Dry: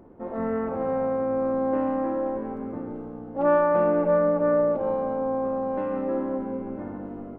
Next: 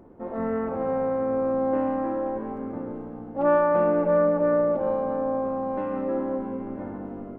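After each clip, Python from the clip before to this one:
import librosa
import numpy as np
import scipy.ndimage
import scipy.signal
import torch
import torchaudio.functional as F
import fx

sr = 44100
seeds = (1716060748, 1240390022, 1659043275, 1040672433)

y = x + 10.0 ** (-16.0 / 20.0) * np.pad(x, (int(665 * sr / 1000.0), 0))[:len(x)]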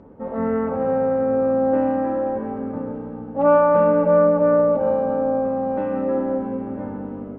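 y = fx.air_absorb(x, sr, metres=110.0)
y = fx.notch_comb(y, sr, f0_hz=350.0)
y = F.gain(torch.from_numpy(y), 6.0).numpy()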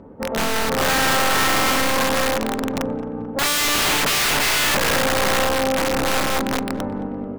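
y = fx.cheby_harmonics(x, sr, harmonics=(8,), levels_db=(-24,), full_scale_db=-5.5)
y = (np.mod(10.0 ** (18.0 / 20.0) * y + 1.0, 2.0) - 1.0) / 10.0 ** (18.0 / 20.0)
y = fx.echo_filtered(y, sr, ms=219, feedback_pct=56, hz=2200.0, wet_db=-16.5)
y = F.gain(torch.from_numpy(y), 3.5).numpy()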